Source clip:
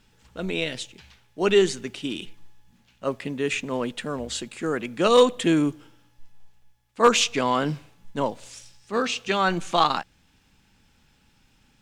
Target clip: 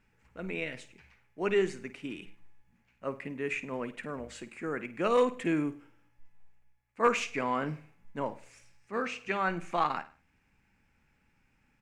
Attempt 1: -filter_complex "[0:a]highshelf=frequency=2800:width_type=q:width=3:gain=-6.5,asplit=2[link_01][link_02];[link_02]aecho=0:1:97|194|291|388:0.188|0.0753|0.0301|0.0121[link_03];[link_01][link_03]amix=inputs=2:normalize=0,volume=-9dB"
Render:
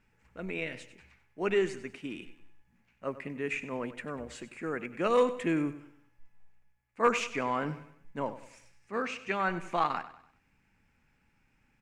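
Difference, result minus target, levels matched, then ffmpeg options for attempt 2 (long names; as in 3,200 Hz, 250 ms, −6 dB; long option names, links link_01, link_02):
echo 45 ms late
-filter_complex "[0:a]highshelf=frequency=2800:width_type=q:width=3:gain=-6.5,asplit=2[link_01][link_02];[link_02]aecho=0:1:52|104|156|208:0.188|0.0753|0.0301|0.0121[link_03];[link_01][link_03]amix=inputs=2:normalize=0,volume=-9dB"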